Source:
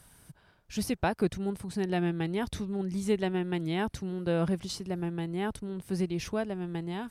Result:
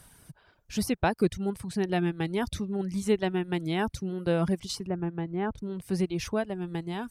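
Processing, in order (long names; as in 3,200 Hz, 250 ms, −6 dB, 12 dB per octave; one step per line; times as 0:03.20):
reverb reduction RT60 0.62 s
0:04.87–0:05.58: low-pass filter 1,800 Hz 12 dB per octave
level +3 dB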